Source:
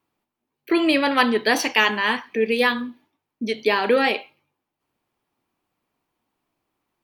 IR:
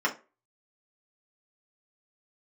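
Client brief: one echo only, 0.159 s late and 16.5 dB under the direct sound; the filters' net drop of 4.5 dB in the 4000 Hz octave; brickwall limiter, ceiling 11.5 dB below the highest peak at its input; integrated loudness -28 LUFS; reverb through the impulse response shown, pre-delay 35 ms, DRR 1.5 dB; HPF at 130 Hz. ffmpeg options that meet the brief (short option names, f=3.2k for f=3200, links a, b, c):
-filter_complex "[0:a]highpass=130,equalizer=f=4k:t=o:g=-6.5,alimiter=limit=-15.5dB:level=0:latency=1,aecho=1:1:159:0.15,asplit=2[a][b];[1:a]atrim=start_sample=2205,adelay=35[c];[b][c]afir=irnorm=-1:irlink=0,volume=-13dB[d];[a][d]amix=inputs=2:normalize=0,volume=-4.5dB"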